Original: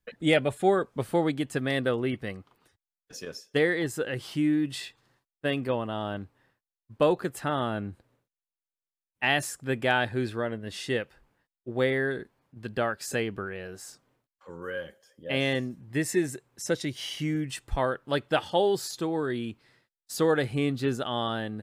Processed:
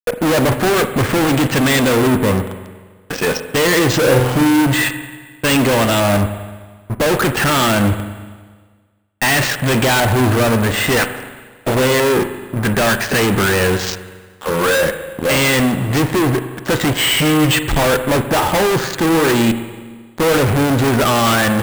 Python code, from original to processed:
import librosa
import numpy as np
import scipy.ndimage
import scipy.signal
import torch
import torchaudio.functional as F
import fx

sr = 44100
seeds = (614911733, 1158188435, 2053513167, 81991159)

y = fx.spec_clip(x, sr, under_db=24, at=(10.98, 11.74), fade=0.02)
y = fx.level_steps(y, sr, step_db=13, at=(19.45, 20.27))
y = fx.filter_lfo_lowpass(y, sr, shape='saw_up', hz=0.5, low_hz=900.0, high_hz=4300.0, q=1.6)
y = fx.fuzz(y, sr, gain_db=47.0, gate_db=-52.0)
y = fx.room_flutter(y, sr, wall_m=8.1, rt60_s=0.56, at=(4.01, 4.43), fade=0.02)
y = fx.rev_spring(y, sr, rt60_s=1.5, pass_ms=(39, 43), chirp_ms=55, drr_db=9.0)
y = np.repeat(y[::4], 4)[:len(y)]